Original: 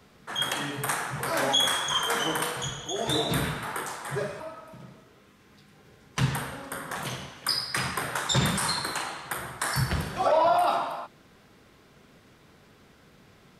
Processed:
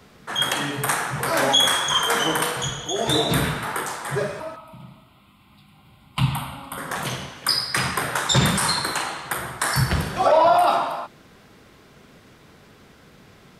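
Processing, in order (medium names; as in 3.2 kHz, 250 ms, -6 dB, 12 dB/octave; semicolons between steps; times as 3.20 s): 4.56–6.78 s: static phaser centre 1.7 kHz, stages 6; trim +6 dB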